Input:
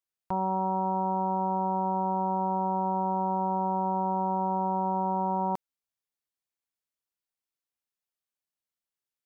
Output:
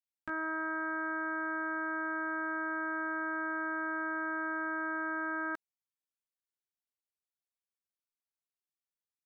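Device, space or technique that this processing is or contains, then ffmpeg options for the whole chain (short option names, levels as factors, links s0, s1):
chipmunk voice: -af "asetrate=74167,aresample=44100,atempo=0.594604,volume=0.422"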